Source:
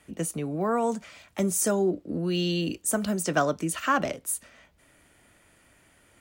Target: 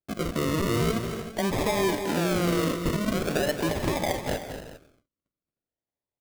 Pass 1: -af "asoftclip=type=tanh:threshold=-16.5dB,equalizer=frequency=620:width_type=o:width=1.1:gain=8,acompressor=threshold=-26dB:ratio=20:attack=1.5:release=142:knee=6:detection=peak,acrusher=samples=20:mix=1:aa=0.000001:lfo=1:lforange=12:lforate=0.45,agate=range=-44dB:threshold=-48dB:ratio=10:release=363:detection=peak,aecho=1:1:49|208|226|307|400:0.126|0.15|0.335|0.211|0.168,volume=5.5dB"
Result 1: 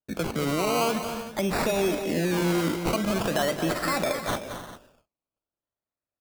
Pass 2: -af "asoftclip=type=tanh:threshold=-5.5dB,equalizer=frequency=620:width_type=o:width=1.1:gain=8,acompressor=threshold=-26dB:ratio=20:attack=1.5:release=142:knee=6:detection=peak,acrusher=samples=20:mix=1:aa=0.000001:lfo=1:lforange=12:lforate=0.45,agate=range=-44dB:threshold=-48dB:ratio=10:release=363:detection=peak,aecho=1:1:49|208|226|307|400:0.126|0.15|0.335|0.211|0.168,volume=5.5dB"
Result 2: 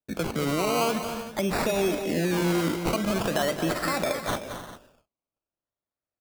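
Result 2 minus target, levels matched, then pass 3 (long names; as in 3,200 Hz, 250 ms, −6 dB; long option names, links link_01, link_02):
sample-and-hold swept by an LFO: distortion −9 dB
-af "asoftclip=type=tanh:threshold=-5.5dB,equalizer=frequency=620:width_type=o:width=1.1:gain=8,acompressor=threshold=-26dB:ratio=20:attack=1.5:release=142:knee=6:detection=peak,acrusher=samples=43:mix=1:aa=0.000001:lfo=1:lforange=25.8:lforate=0.45,agate=range=-44dB:threshold=-48dB:ratio=10:release=363:detection=peak,aecho=1:1:49|208|226|307|400:0.126|0.15|0.335|0.211|0.168,volume=5.5dB"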